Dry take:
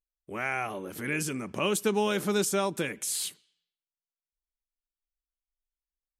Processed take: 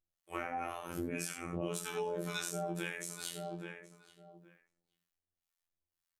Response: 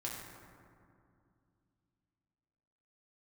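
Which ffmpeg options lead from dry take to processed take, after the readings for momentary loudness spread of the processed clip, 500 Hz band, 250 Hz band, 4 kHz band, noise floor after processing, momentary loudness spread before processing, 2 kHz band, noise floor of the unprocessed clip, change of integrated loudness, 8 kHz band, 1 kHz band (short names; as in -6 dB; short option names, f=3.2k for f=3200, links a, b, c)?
20 LU, -10.0 dB, -9.0 dB, -9.5 dB, under -85 dBFS, 9 LU, -9.5 dB, under -85 dBFS, -10.0 dB, -9.5 dB, -7.5 dB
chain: -filter_complex "[0:a]acrossover=split=750[a][b];[a]aeval=exprs='val(0)*(1-1/2+1/2*cos(2*PI*1.9*n/s))':c=same[c];[b]aeval=exprs='val(0)*(1-1/2-1/2*cos(2*PI*1.9*n/s))':c=same[d];[c][d]amix=inputs=2:normalize=0,asplit=2[e][f];[f]adelay=824,lowpass=f=1.7k:p=1,volume=-16.5dB,asplit=2[g][h];[h]adelay=824,lowpass=f=1.7k:p=1,volume=0.18[i];[e][g][i]amix=inputs=3:normalize=0[j];[1:a]atrim=start_sample=2205,atrim=end_sample=4410[k];[j][k]afir=irnorm=-1:irlink=0,afftfilt=real='hypot(re,im)*cos(PI*b)':imag='0':win_size=2048:overlap=0.75,acompressor=threshold=-47dB:ratio=6,volume=12.5dB"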